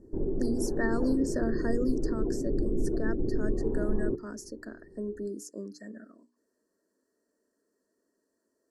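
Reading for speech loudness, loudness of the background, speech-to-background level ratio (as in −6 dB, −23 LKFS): −35.5 LKFS, −32.5 LKFS, −3.0 dB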